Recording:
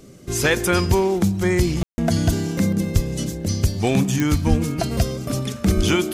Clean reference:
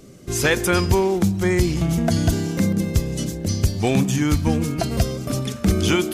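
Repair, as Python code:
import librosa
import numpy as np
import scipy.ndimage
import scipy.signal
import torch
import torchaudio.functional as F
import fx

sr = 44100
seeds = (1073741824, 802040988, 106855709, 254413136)

y = fx.fix_declick_ar(x, sr, threshold=10.0)
y = fx.fix_deplosive(y, sr, at_s=(2.94, 4.49, 5.76))
y = fx.fix_ambience(y, sr, seeds[0], print_start_s=0.0, print_end_s=0.5, start_s=1.83, end_s=1.98)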